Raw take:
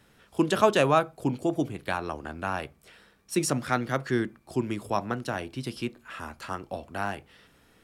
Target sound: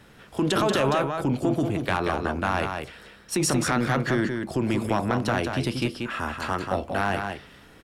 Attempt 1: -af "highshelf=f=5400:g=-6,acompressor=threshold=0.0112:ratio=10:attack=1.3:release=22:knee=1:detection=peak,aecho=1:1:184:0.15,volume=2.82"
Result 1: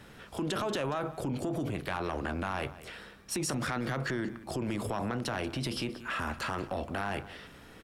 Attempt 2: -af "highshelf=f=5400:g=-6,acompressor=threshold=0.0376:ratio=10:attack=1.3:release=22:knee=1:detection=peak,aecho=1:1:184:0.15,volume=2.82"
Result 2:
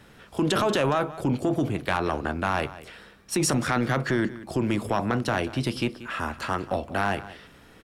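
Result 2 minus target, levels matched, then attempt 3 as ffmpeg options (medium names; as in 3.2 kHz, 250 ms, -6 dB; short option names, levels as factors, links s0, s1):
echo-to-direct -11 dB
-af "highshelf=f=5400:g=-6,acompressor=threshold=0.0376:ratio=10:attack=1.3:release=22:knee=1:detection=peak,aecho=1:1:184:0.531,volume=2.82"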